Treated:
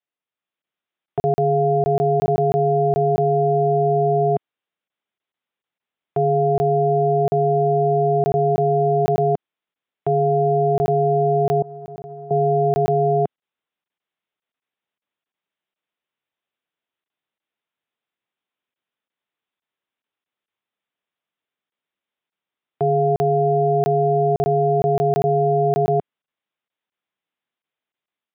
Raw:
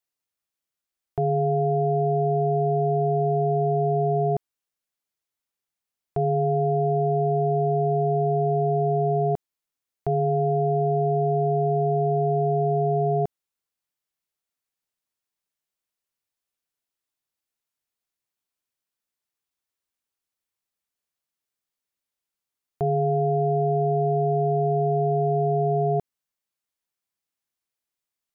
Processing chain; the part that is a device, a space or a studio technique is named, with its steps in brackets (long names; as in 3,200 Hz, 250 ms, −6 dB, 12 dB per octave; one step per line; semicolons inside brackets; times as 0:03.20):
0:11.62–0:12.31: downward expander −10 dBFS
call with lost packets (high-pass filter 150 Hz 12 dB per octave; downsampling to 8,000 Hz; automatic gain control gain up to 5.5 dB; dropped packets of 20 ms random)